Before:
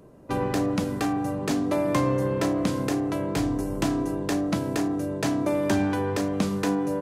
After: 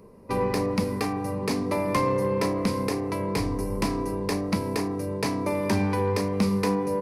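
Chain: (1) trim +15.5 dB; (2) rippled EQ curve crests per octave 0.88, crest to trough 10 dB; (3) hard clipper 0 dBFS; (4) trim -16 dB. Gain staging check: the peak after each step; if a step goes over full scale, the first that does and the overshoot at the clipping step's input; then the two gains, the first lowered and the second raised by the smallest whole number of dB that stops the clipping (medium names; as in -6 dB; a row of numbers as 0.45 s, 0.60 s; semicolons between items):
+4.0 dBFS, +6.5 dBFS, 0.0 dBFS, -16.0 dBFS; step 1, 6.5 dB; step 1 +8.5 dB, step 4 -9 dB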